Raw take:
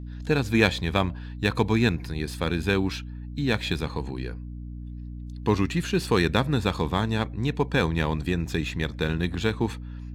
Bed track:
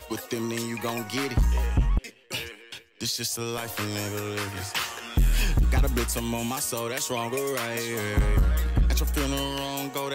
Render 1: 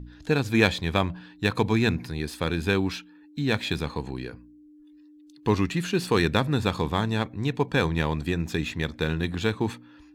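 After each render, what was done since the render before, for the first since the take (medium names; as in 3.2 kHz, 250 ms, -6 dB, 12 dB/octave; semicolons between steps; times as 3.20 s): de-hum 60 Hz, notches 4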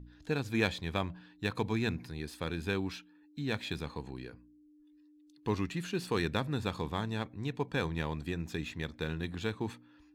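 trim -9.5 dB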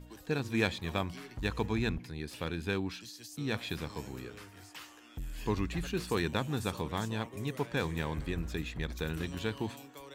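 add bed track -19.5 dB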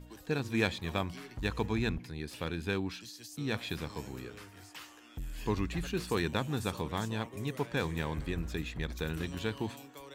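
no audible change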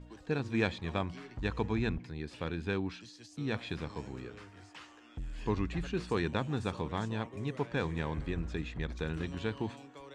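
low-pass 8.6 kHz 24 dB/octave; treble shelf 4.1 kHz -10 dB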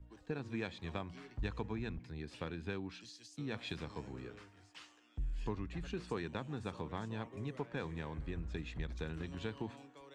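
compression 8:1, threshold -37 dBFS, peak gain reduction 12.5 dB; three bands expanded up and down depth 70%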